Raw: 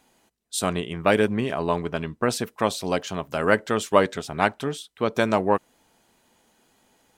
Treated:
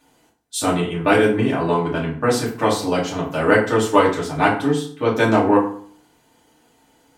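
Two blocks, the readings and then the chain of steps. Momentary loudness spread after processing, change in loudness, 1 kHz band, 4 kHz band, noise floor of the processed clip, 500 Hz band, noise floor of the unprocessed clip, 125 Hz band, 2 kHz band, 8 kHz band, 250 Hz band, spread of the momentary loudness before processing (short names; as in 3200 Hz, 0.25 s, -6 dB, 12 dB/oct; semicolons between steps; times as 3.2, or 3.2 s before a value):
7 LU, +5.5 dB, +5.5 dB, +3.5 dB, -59 dBFS, +5.0 dB, -67 dBFS, +6.5 dB, +5.0 dB, +3.5 dB, +7.5 dB, 7 LU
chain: FDN reverb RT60 0.52 s, low-frequency decay 1.2×, high-frequency decay 0.65×, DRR -6.5 dB; gain -2.5 dB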